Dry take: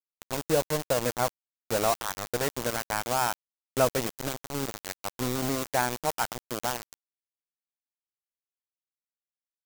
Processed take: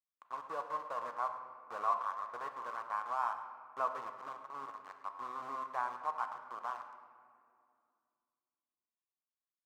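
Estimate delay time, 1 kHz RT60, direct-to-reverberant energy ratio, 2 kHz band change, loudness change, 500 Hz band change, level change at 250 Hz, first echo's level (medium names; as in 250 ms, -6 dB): 107 ms, 2.2 s, 6.0 dB, -12.5 dB, -10.5 dB, -17.5 dB, -26.0 dB, -14.5 dB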